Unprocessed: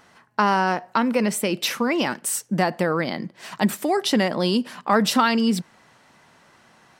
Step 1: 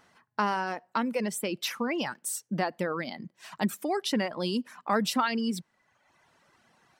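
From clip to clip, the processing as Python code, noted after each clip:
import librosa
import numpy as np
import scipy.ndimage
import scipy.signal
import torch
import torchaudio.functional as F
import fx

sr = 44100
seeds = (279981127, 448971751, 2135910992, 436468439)

y = fx.dereverb_blind(x, sr, rt60_s=0.99)
y = y * 10.0 ** (-7.5 / 20.0)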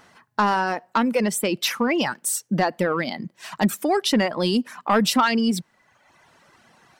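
y = 10.0 ** (-17.5 / 20.0) * np.tanh(x / 10.0 ** (-17.5 / 20.0))
y = y * 10.0 ** (9.0 / 20.0)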